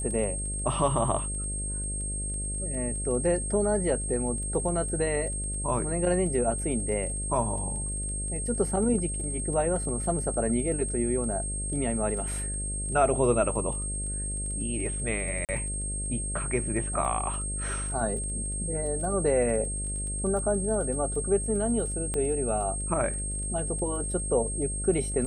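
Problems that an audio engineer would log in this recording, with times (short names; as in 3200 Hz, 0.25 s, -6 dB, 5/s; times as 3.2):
buzz 50 Hz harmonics 13 -34 dBFS
crackle 15/s -37 dBFS
tone 8500 Hz -33 dBFS
15.45–15.49 gap 38 ms
22.14 pop -18 dBFS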